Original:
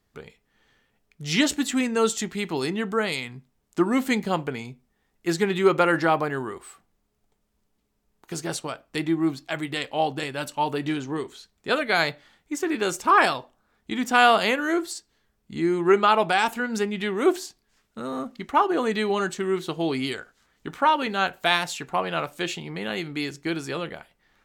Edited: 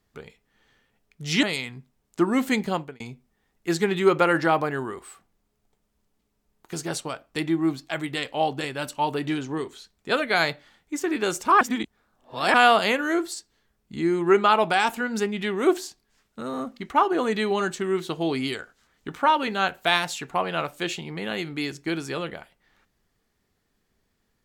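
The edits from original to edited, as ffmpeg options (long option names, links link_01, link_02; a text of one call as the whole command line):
ffmpeg -i in.wav -filter_complex "[0:a]asplit=5[link_01][link_02][link_03][link_04][link_05];[link_01]atrim=end=1.432[link_06];[link_02]atrim=start=3.018:end=4.59,asetpts=PTS-STARTPTS,afade=type=out:start_time=1.262:duration=0.31[link_07];[link_03]atrim=start=4.59:end=13.202,asetpts=PTS-STARTPTS,afade=type=in:duration=0.004:curve=hsin[link_08];[link_04]atrim=start=13.198:end=14.132,asetpts=PTS-STARTPTS,areverse[link_09];[link_05]atrim=start=14.128[link_10];[link_07][link_08]concat=n=2:v=0:a=1[link_11];[link_06][link_11]acrossfade=duration=0.004:curve1=hsin:curve2=hsin[link_12];[link_12][link_09]acrossfade=duration=0.004:curve1=hsin:curve2=hsin[link_13];[link_13][link_10]acrossfade=duration=0.004:curve1=hsin:curve2=hsin" out.wav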